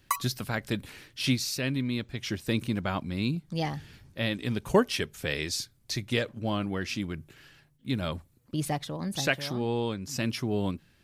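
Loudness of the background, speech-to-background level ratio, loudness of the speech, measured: -33.5 LUFS, 2.5 dB, -31.0 LUFS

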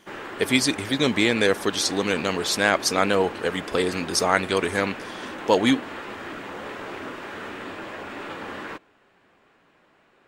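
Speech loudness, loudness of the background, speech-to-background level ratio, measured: -22.5 LUFS, -35.5 LUFS, 13.0 dB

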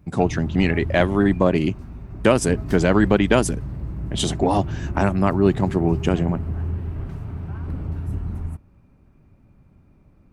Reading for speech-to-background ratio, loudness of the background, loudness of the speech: 10.0 dB, -30.5 LUFS, -20.5 LUFS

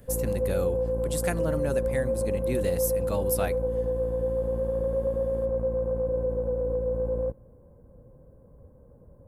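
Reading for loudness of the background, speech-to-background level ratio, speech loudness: -28.0 LUFS, -4.5 dB, -32.5 LUFS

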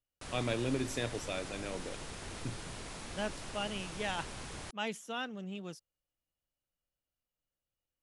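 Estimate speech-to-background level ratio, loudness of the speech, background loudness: 5.5 dB, -39.0 LUFS, -44.5 LUFS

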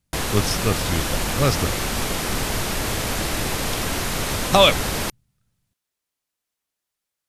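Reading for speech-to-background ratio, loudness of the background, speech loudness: 2.5 dB, -24.0 LUFS, -21.5 LUFS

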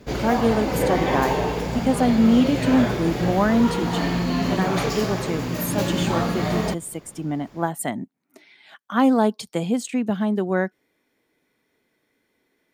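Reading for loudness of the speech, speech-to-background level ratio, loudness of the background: -23.5 LUFS, 1.0 dB, -24.5 LUFS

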